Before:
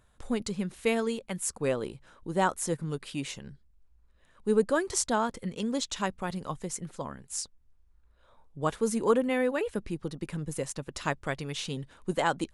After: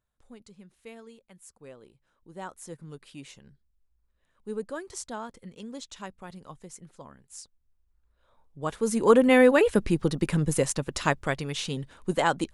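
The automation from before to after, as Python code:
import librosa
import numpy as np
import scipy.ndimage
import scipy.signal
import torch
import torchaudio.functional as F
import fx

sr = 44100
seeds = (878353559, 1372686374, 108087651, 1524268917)

y = fx.gain(x, sr, db=fx.line((1.86, -18.5), (2.89, -9.5), (7.43, -9.5), (8.62, -3.0), (9.34, 10.0), (10.41, 10.0), (11.51, 3.0)))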